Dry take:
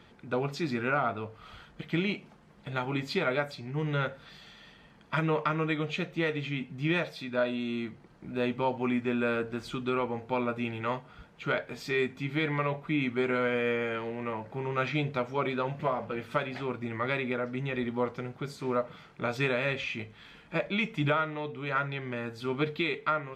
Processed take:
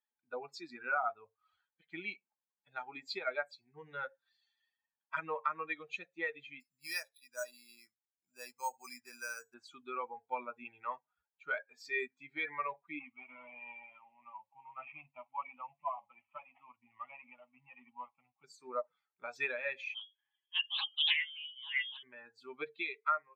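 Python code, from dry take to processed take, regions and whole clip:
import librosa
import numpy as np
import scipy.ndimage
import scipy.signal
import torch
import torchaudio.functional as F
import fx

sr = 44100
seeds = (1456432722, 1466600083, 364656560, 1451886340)

y = fx.chain(x, sr, fx.peak_eq(hz=270.0, db=-8.0, octaves=2.8),
    fx.resample_bad(factor=6, down='filtered', up='hold'), at=(6.6, 9.54))
y = fx.chain(y, sr, fx.cvsd(bps=16000),
    fx.highpass(hz=100.0, slope=12),
    fx.fixed_phaser(hz=1600.0, stages=6), at=(12.99, 18.44))
y = fx.chain(y, sr, fx.high_shelf(hz=2500.0, db=-10.5),
    fx.freq_invert(carrier_hz=3400),
    fx.doppler_dist(depth_ms=0.38), at=(19.94, 22.03))
y = fx.bin_expand(y, sr, power=2.0)
y = scipy.signal.sosfilt(scipy.signal.butter(2, 760.0, 'highpass', fs=sr, output='sos'), y)
y = fx.high_shelf(y, sr, hz=7500.0, db=-8.5)
y = F.gain(torch.from_numpy(y), 1.5).numpy()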